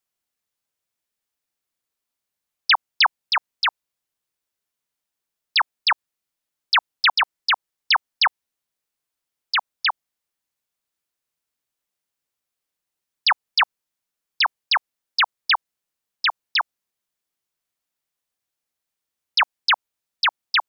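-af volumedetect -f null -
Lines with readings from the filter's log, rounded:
mean_volume: -27.0 dB
max_volume: -10.3 dB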